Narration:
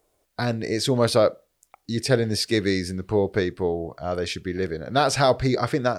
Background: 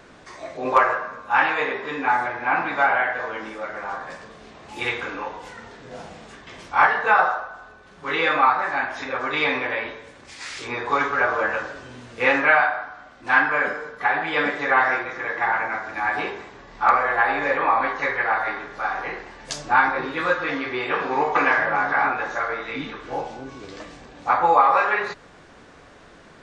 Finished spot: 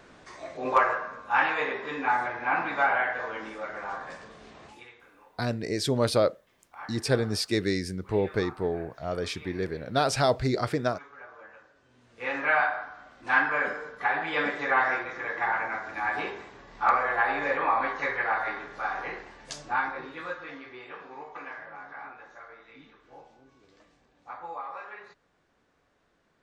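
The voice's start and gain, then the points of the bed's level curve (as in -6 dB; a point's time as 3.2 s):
5.00 s, -4.5 dB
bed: 4.66 s -5 dB
4.88 s -26.5 dB
11.73 s -26.5 dB
12.61 s -5.5 dB
19.13 s -5.5 dB
21.3 s -22 dB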